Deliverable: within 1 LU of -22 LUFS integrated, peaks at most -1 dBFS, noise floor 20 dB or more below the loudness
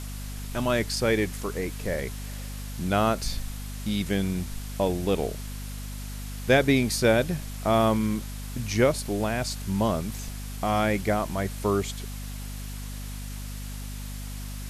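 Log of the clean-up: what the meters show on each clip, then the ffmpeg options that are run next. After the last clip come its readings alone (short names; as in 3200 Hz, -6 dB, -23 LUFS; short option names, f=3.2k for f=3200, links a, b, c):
hum 50 Hz; harmonics up to 250 Hz; hum level -33 dBFS; noise floor -36 dBFS; noise floor target -48 dBFS; loudness -28.0 LUFS; peak -7.5 dBFS; loudness target -22.0 LUFS
-> -af "bandreject=f=50:t=h:w=6,bandreject=f=100:t=h:w=6,bandreject=f=150:t=h:w=6,bandreject=f=200:t=h:w=6,bandreject=f=250:t=h:w=6"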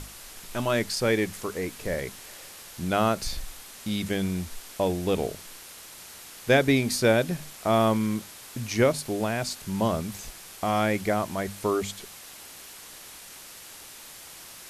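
hum none; noise floor -45 dBFS; noise floor target -47 dBFS
-> -af "afftdn=nr=6:nf=-45"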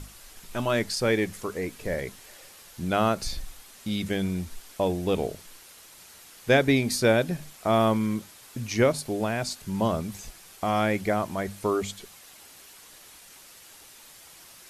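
noise floor -50 dBFS; loudness -27.0 LUFS; peak -8.5 dBFS; loudness target -22.0 LUFS
-> -af "volume=5dB"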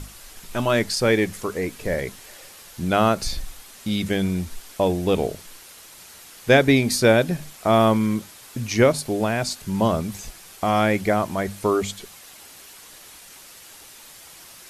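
loudness -22.0 LUFS; peak -3.5 dBFS; noise floor -45 dBFS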